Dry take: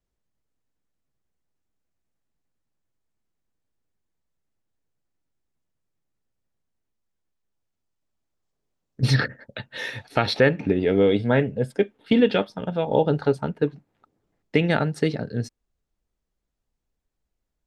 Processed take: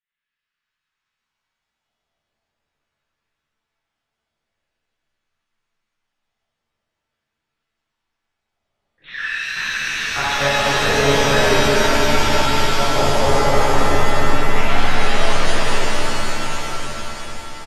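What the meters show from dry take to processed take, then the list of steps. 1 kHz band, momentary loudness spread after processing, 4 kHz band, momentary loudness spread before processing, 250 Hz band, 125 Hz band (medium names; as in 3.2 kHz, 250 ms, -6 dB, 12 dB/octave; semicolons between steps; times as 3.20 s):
+13.0 dB, 12 LU, +12.5 dB, 12 LU, -1.0 dB, +1.0 dB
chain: in parallel at +1 dB: compression, threshold -29 dBFS, peak gain reduction 16 dB; on the sum: LFO high-pass saw down 0.45 Hz 550–1800 Hz; rotary cabinet horn 5.5 Hz, later 1.2 Hz, at 0.50 s; on a send: frequency-shifting echo 409 ms, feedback 58%, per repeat -92 Hz, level -4 dB; on the sum: monotone LPC vocoder at 8 kHz 140 Hz; pitch-shifted reverb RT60 3.9 s, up +7 st, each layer -2 dB, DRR -11 dB; trim -8 dB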